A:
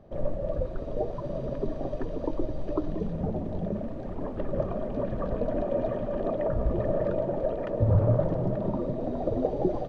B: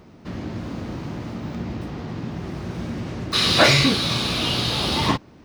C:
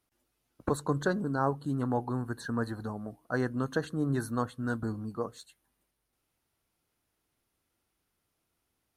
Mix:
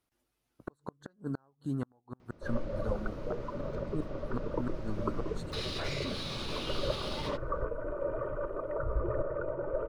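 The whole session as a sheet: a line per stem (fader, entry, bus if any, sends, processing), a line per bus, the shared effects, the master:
-2.5 dB, 2.30 s, no send, synth low-pass 1500 Hz, resonance Q 16; tremolo saw up 1.3 Hz, depth 45%; fixed phaser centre 1100 Hz, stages 8
-14.0 dB, 2.20 s, no send, limiter -15 dBFS, peak gain reduction 11.5 dB
-2.0 dB, 0.00 s, no send, flipped gate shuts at -22 dBFS, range -37 dB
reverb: off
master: high shelf 7700 Hz -4 dB

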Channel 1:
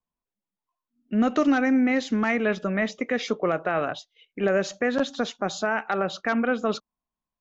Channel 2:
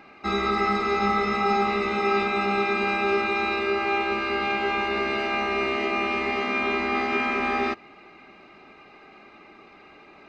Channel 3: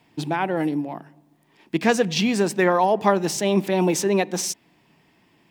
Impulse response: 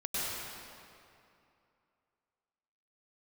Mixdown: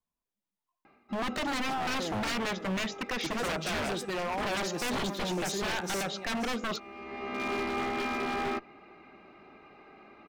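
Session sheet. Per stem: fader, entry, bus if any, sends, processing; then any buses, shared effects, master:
-2.0 dB, 0.00 s, no send, no echo send, dry
-2.5 dB, 0.85 s, no send, no echo send, one diode to ground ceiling -21 dBFS; high shelf 2300 Hz -10 dB; auto duck -18 dB, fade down 0.35 s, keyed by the first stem
-11.5 dB, 1.50 s, no send, echo send -13 dB, de-hum 375.6 Hz, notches 29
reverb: off
echo: echo 0.529 s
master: wavefolder -26.5 dBFS

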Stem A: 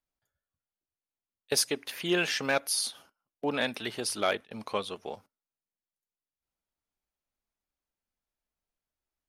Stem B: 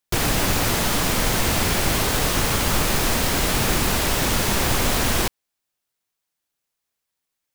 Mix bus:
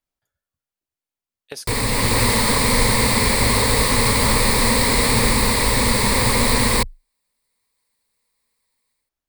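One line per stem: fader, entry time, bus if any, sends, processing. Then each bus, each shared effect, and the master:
+3.0 dB, 0.00 s, no send, compressor 6:1, threshold -35 dBFS, peak gain reduction 13 dB
-2.5 dB, 1.55 s, no send, ripple EQ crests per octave 0.95, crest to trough 12 dB; AGC gain up to 8 dB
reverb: off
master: dry

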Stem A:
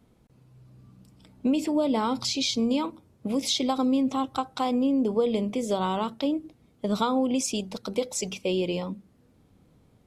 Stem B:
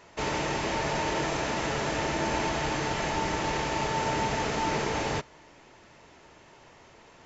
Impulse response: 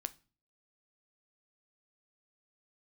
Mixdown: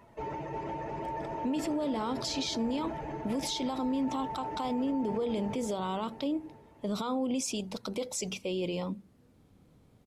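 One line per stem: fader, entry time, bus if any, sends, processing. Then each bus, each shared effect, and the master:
-1.5 dB, 0.00 s, no send, no echo send, dry
-4.0 dB, 0.00 s, no send, echo send -6 dB, spectral contrast raised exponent 2.2; auto duck -11 dB, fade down 1.05 s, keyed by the first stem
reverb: off
echo: feedback echo 0.353 s, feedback 52%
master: limiter -24.5 dBFS, peak gain reduction 12 dB

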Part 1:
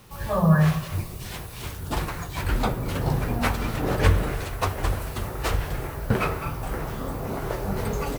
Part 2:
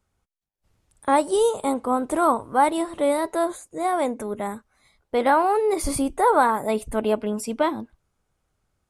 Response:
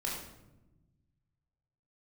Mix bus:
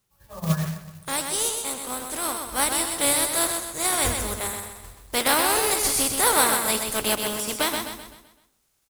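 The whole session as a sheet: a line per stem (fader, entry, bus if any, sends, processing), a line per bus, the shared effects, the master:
+3.0 dB, 0.00 s, send -23 dB, echo send -18.5 dB, upward expander 2.5:1, over -34 dBFS; auto duck -16 dB, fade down 1.00 s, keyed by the second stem
2.37 s -12 dB -> 2.88 s -5 dB, 0.00 s, no send, echo send -5.5 dB, spectral contrast lowered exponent 0.48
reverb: on, RT60 1.0 s, pre-delay 18 ms
echo: feedback echo 0.128 s, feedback 44%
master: short-mantissa float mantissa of 2-bit; high shelf 3600 Hz +9.5 dB

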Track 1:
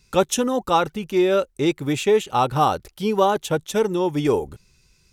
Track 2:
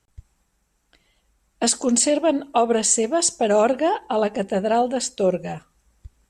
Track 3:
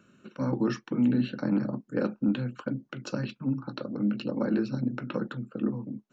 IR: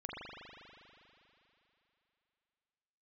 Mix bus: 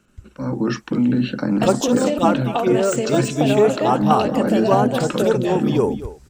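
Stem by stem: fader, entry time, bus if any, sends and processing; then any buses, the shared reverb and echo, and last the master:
-5.5 dB, 1.50 s, no send, echo send -15 dB, envelope phaser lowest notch 320 Hz, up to 3800 Hz, full sweep at -14.5 dBFS
+2.5 dB, 0.00 s, no send, echo send -12.5 dB, de-esser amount 70%; de-hum 63.79 Hz, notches 31; compressor, threshold -28 dBFS, peak gain reduction 13.5 dB
-1.5 dB, 0.00 s, no send, no echo send, limiter -22 dBFS, peak gain reduction 5.5 dB; AGC gain up to 5.5 dB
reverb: off
echo: echo 0.236 s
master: AGC gain up to 7 dB

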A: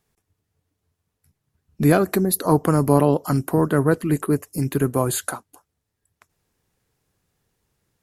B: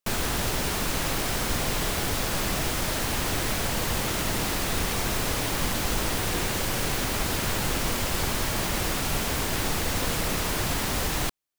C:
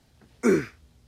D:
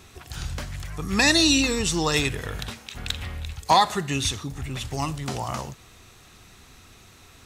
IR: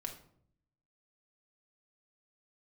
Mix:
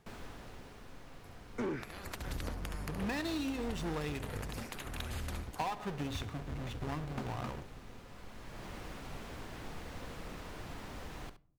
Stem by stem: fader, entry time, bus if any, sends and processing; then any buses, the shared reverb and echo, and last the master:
-8.5 dB, 0.00 s, no send, echo send -7 dB, negative-ratio compressor -22 dBFS, ratio -0.5; spectral compressor 10:1
-18.5 dB, 0.00 s, send -10.5 dB, echo send -11 dB, auto duck -17 dB, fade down 1.10 s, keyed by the first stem
-2.5 dB, 1.15 s, no send, no echo send, soft clip -26 dBFS, distortion -7 dB
-14.5 dB, 1.90 s, send -6 dB, no echo send, half-waves squared off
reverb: on, RT60 0.65 s, pre-delay 4 ms
echo: echo 70 ms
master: LPF 2100 Hz 6 dB/oct; compressor 6:1, threshold -34 dBFS, peak gain reduction 11.5 dB

